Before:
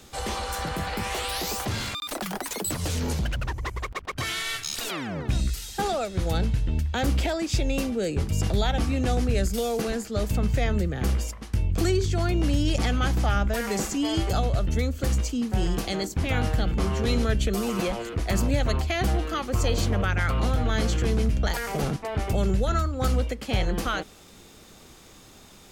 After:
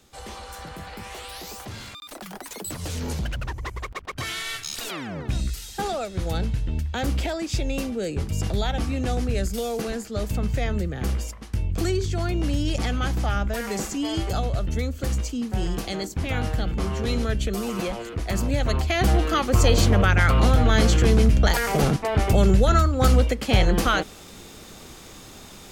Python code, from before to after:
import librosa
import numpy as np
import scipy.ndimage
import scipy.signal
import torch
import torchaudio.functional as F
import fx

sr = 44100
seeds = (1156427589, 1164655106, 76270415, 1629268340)

y = fx.gain(x, sr, db=fx.line((2.08, -8.0), (3.19, -1.0), (18.42, -1.0), (19.3, 6.5)))